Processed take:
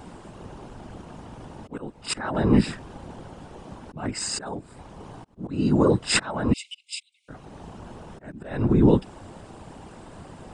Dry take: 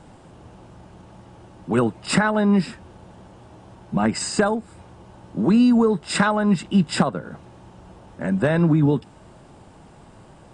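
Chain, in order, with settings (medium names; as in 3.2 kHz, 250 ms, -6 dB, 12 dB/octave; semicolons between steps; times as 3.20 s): slow attack 644 ms; 6.53–7.29 s: brick-wall FIR high-pass 2.1 kHz; whisper effect; trim +4 dB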